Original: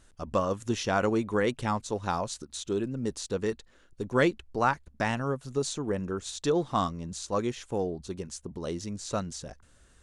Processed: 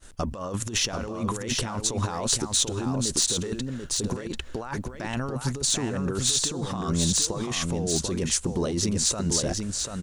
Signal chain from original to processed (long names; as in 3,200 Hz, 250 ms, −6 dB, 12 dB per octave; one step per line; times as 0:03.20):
compressor whose output falls as the input rises −37 dBFS, ratio −1
soft clipping −20 dBFS, distortion −28 dB
high-shelf EQ 6,100 Hz +5 dB
single-tap delay 740 ms −4.5 dB
downward expander −48 dBFS
on a send at −20.5 dB: guitar amp tone stack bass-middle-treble 5-5-5 + convolution reverb RT60 1.6 s, pre-delay 117 ms
on the sum: level +7.5 dB